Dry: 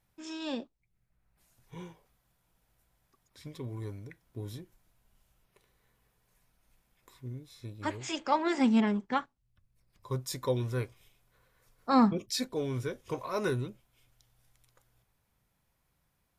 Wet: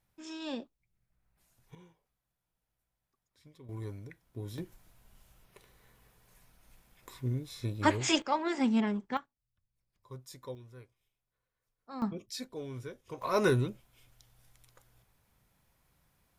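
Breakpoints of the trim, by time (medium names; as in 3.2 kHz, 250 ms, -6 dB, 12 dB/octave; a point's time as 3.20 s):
-2.5 dB
from 1.75 s -13 dB
from 3.69 s -1 dB
from 4.58 s +8 dB
from 8.22 s -3 dB
from 9.17 s -12.5 dB
from 10.55 s -19 dB
from 12.02 s -8 dB
from 13.22 s +4.5 dB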